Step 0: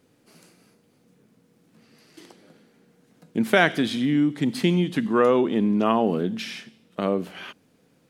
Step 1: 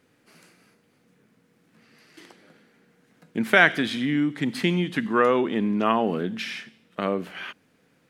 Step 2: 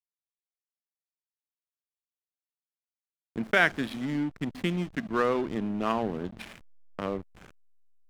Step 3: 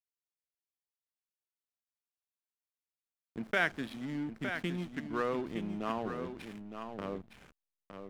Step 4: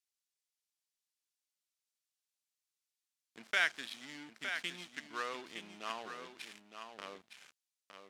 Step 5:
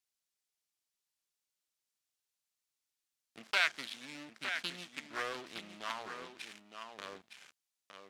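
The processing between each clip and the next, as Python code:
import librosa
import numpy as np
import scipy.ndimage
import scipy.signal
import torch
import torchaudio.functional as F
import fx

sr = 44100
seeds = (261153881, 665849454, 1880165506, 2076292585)

y1 = fx.peak_eq(x, sr, hz=1800.0, db=8.0, octaves=1.5)
y1 = y1 * 10.0 ** (-3.0 / 20.0)
y2 = fx.backlash(y1, sr, play_db=-24.5)
y2 = y2 * 10.0 ** (-5.5 / 20.0)
y3 = y2 + 10.0 ** (-8.0 / 20.0) * np.pad(y2, (int(912 * sr / 1000.0), 0))[:len(y2)]
y3 = y3 * 10.0 ** (-7.5 / 20.0)
y4 = fx.bandpass_q(y3, sr, hz=5900.0, q=0.68)
y4 = y4 * 10.0 ** (7.5 / 20.0)
y5 = fx.doppler_dist(y4, sr, depth_ms=0.38)
y5 = y5 * 10.0 ** (1.5 / 20.0)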